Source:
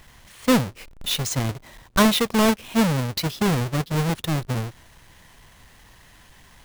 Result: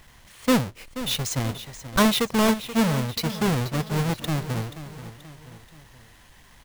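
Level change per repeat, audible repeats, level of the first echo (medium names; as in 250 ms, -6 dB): -6.5 dB, 3, -13.0 dB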